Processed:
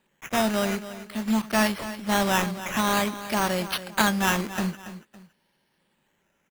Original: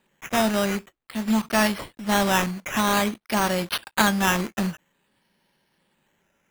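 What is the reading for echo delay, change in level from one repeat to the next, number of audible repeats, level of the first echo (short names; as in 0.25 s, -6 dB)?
0.28 s, -8.5 dB, 2, -13.5 dB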